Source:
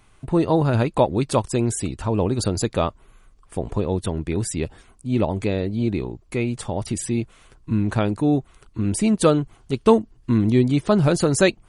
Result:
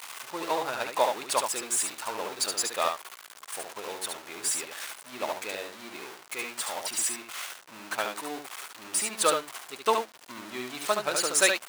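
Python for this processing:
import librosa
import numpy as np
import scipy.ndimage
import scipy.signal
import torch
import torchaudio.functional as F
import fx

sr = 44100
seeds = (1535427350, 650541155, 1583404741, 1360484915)

p1 = x + 0.5 * 10.0 ** (-24.0 / 20.0) * np.sign(x)
p2 = scipy.signal.sosfilt(scipy.signal.butter(2, 880.0, 'highpass', fs=sr, output='sos'), p1)
p3 = p2 + fx.echo_single(p2, sr, ms=72, db=-3.5, dry=0)
y = fx.upward_expand(p3, sr, threshold_db=-44.0, expansion=1.5)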